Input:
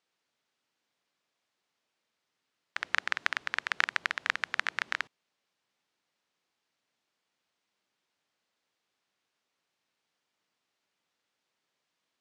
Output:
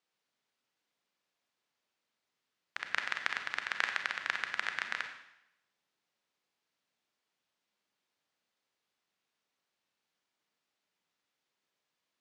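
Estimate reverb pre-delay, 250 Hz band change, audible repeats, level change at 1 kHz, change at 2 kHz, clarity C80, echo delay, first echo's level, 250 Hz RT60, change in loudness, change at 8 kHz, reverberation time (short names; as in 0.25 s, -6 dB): 31 ms, -3.0 dB, none, -3.5 dB, -3.5 dB, 9.0 dB, none, none, 0.85 s, -3.5 dB, -3.5 dB, 0.85 s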